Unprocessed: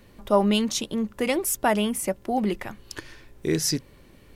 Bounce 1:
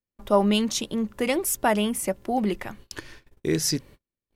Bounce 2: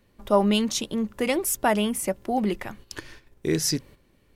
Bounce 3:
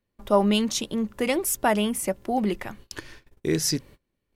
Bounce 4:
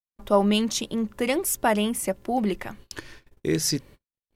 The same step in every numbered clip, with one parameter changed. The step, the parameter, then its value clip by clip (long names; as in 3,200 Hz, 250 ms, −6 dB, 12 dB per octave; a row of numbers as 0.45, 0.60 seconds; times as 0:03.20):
noise gate, range: −42, −10, −27, −59 decibels